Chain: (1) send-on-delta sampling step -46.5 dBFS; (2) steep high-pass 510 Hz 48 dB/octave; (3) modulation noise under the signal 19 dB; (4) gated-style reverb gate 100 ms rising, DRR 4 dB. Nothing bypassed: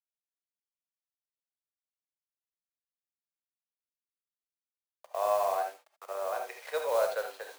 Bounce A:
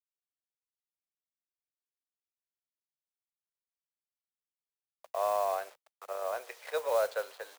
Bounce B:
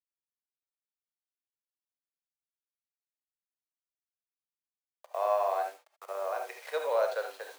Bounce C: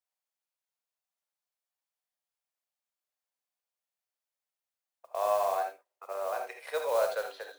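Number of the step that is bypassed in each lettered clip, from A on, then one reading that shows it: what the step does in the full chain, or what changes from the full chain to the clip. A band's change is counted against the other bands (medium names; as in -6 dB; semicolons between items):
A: 4, loudness change -1.5 LU; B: 3, 4 kHz band -1.5 dB; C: 1, distortion -23 dB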